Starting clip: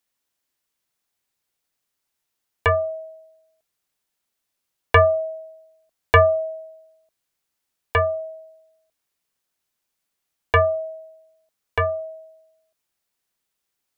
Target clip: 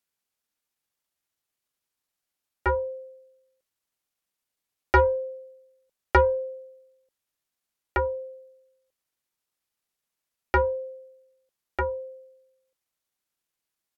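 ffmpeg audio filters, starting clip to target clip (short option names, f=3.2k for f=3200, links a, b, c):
-af "aeval=exprs='0.531*(cos(1*acos(clip(val(0)/0.531,-1,1)))-cos(1*PI/2))+0.0133*(cos(2*acos(clip(val(0)/0.531,-1,1)))-cos(2*PI/2))+0.0299*(cos(3*acos(clip(val(0)/0.531,-1,1)))-cos(3*PI/2))':c=same,asetrate=36028,aresample=44100,atempo=1.22405,volume=-4dB"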